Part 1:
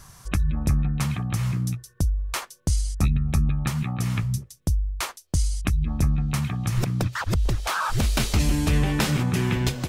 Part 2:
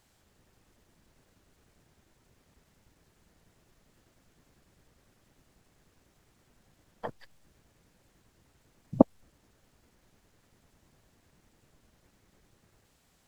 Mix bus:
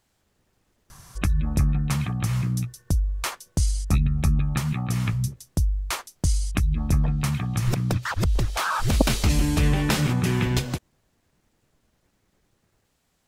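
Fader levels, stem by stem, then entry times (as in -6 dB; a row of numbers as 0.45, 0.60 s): +0.5, -2.5 dB; 0.90, 0.00 s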